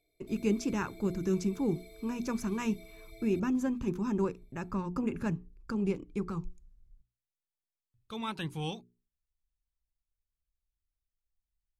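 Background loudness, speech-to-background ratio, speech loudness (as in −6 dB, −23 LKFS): −53.5 LKFS, 19.5 dB, −34.0 LKFS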